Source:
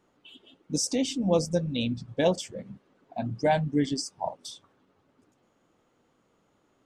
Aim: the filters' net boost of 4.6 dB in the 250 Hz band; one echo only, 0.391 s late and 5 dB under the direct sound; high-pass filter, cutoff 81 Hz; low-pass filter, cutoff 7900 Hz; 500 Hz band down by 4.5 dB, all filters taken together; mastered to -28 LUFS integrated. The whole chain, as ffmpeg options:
-af "highpass=81,lowpass=7.9k,equalizer=f=250:t=o:g=7.5,equalizer=f=500:t=o:g=-7,aecho=1:1:391:0.562,volume=-2dB"

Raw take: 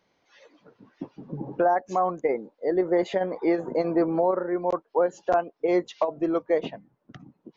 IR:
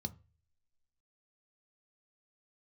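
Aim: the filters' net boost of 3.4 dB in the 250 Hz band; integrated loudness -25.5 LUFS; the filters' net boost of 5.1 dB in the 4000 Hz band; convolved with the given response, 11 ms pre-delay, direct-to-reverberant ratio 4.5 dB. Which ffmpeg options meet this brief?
-filter_complex "[0:a]equalizer=f=250:t=o:g=6,equalizer=f=4k:t=o:g=6.5,asplit=2[a][b];[1:a]atrim=start_sample=2205,adelay=11[c];[b][c]afir=irnorm=-1:irlink=0,volume=-2.5dB[d];[a][d]amix=inputs=2:normalize=0,volume=-4.5dB"

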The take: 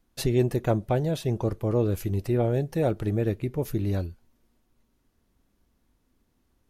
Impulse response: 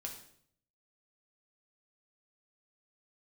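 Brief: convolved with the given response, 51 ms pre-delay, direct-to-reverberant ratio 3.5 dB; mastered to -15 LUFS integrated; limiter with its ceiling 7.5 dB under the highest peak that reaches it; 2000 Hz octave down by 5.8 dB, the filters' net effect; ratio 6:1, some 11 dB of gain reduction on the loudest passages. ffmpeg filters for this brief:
-filter_complex "[0:a]equalizer=f=2k:t=o:g=-8,acompressor=threshold=-30dB:ratio=6,alimiter=level_in=4.5dB:limit=-24dB:level=0:latency=1,volume=-4.5dB,asplit=2[a][b];[1:a]atrim=start_sample=2205,adelay=51[c];[b][c]afir=irnorm=-1:irlink=0,volume=-1dB[d];[a][d]amix=inputs=2:normalize=0,volume=21.5dB"

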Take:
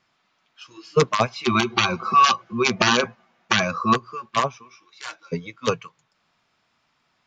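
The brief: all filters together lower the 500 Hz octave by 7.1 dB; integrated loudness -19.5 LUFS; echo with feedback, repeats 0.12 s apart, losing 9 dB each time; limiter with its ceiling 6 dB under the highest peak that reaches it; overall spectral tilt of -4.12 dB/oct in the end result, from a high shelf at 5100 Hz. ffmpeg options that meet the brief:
-af "equalizer=f=500:t=o:g=-9,highshelf=f=5.1k:g=-5.5,alimiter=limit=-11.5dB:level=0:latency=1,aecho=1:1:120|240|360|480:0.355|0.124|0.0435|0.0152,volume=5.5dB"

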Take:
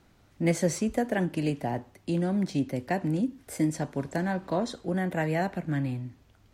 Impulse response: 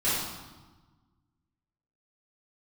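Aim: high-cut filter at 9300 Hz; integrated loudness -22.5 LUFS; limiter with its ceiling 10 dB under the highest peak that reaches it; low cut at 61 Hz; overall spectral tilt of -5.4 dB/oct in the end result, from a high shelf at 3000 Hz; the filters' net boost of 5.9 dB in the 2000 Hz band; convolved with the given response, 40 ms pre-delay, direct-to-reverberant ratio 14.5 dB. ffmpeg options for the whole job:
-filter_complex "[0:a]highpass=61,lowpass=9.3k,equalizer=f=2k:t=o:g=5.5,highshelf=f=3k:g=4.5,alimiter=limit=-21.5dB:level=0:latency=1,asplit=2[a][b];[1:a]atrim=start_sample=2205,adelay=40[c];[b][c]afir=irnorm=-1:irlink=0,volume=-26.5dB[d];[a][d]amix=inputs=2:normalize=0,volume=9dB"

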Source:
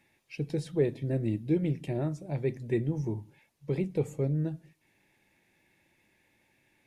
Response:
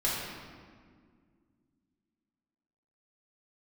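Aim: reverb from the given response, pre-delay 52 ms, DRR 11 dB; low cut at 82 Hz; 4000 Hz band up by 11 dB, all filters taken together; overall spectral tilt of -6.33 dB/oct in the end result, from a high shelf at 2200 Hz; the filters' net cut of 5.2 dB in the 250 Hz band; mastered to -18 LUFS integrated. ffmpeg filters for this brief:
-filter_complex "[0:a]highpass=82,equalizer=f=250:t=o:g=-9,highshelf=f=2.2k:g=5.5,equalizer=f=4k:t=o:g=8.5,asplit=2[a][b];[1:a]atrim=start_sample=2205,adelay=52[c];[b][c]afir=irnorm=-1:irlink=0,volume=-20dB[d];[a][d]amix=inputs=2:normalize=0,volume=16.5dB"

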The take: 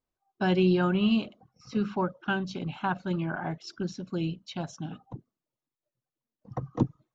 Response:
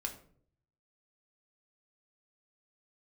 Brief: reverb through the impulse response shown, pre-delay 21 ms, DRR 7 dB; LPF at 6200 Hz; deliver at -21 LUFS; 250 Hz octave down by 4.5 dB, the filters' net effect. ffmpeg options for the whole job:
-filter_complex "[0:a]lowpass=6.2k,equalizer=f=250:t=o:g=-7,asplit=2[a][b];[1:a]atrim=start_sample=2205,adelay=21[c];[b][c]afir=irnorm=-1:irlink=0,volume=-7dB[d];[a][d]amix=inputs=2:normalize=0,volume=11.5dB"

